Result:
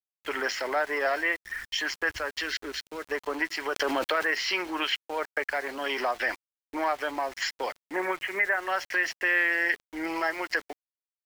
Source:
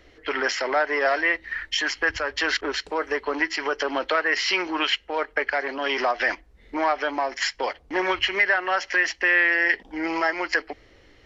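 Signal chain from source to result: 2.41–3.09 bell 820 Hz -11.5 dB 1.5 oct; 7.85–8.68 Chebyshev band-pass 120–2200 Hz, order 3; sample gate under -37 dBFS; 3.75–4.31 fast leveller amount 70%; gain -5 dB

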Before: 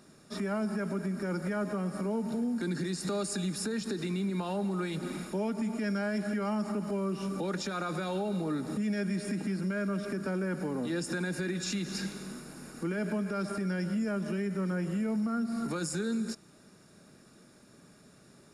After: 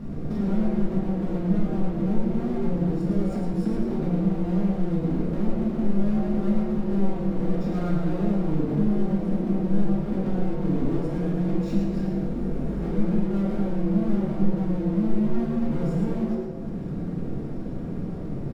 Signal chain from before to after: half-waves squared off; tilt -4.5 dB/oct; compressor 6:1, threshold -35 dBFS, peak gain reduction 21.5 dB; frequency-shifting echo 0.109 s, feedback 31%, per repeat +150 Hz, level -5.5 dB; reverb RT60 0.90 s, pre-delay 4 ms, DRR -3.5 dB; gain +2.5 dB

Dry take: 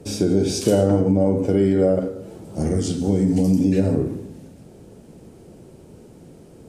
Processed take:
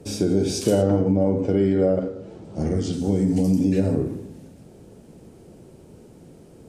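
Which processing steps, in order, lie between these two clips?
0.82–2.93 LPF 5500 Hz 12 dB/oct; gain -2 dB

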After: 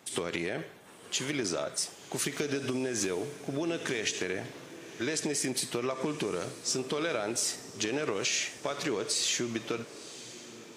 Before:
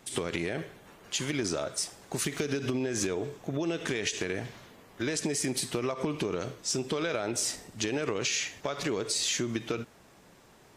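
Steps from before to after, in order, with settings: HPF 80 Hz; low shelf 150 Hz -7.5 dB; diffused feedback echo 1.003 s, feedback 43%, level -15.5 dB

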